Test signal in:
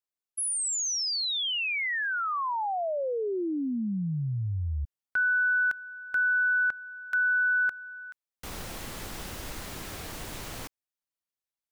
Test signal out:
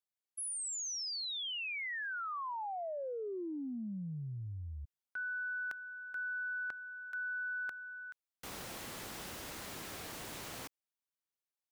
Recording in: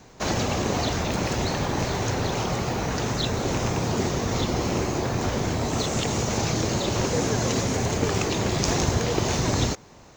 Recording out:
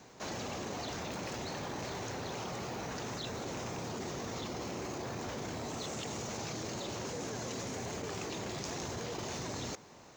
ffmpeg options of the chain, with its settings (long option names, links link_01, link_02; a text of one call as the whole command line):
ffmpeg -i in.wav -af "highpass=frequency=170:poles=1,areverse,acompressor=threshold=-35dB:ratio=6:attack=9.1:release=24:knee=6:detection=rms,areverse,volume=-4.5dB" out.wav